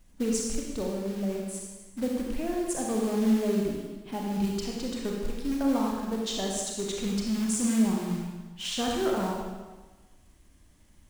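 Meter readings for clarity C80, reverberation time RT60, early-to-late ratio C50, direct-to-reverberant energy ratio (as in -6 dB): 2.5 dB, 1.3 s, 0.0 dB, -1.5 dB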